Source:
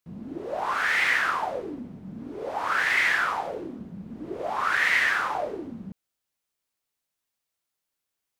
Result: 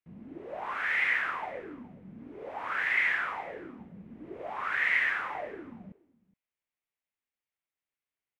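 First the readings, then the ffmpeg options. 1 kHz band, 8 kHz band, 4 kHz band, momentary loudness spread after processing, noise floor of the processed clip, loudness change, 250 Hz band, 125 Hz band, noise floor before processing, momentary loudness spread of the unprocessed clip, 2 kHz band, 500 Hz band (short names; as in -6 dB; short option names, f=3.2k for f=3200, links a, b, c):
-8.5 dB, under -15 dB, -10.5 dB, 22 LU, under -85 dBFS, -4.5 dB, -8.5 dB, -8.5 dB, -84 dBFS, 18 LU, -5.0 dB, -8.5 dB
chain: -filter_complex "[0:a]firequalizer=gain_entry='entry(1400,0);entry(2100,6);entry(4400,-10)':delay=0.05:min_phase=1,asplit=2[a][b];[b]aecho=0:1:418:0.075[c];[a][c]amix=inputs=2:normalize=0,volume=-8.5dB"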